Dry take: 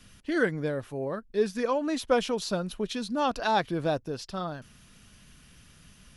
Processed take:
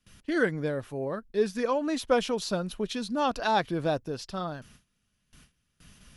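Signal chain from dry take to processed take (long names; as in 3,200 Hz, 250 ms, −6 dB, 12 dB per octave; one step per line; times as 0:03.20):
noise gate with hold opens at −43 dBFS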